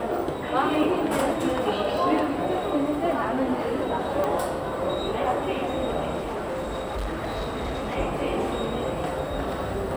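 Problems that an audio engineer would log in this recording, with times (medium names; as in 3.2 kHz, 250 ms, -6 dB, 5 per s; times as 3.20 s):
4.24 s: pop -15 dBFS
6.17–7.97 s: clipped -26 dBFS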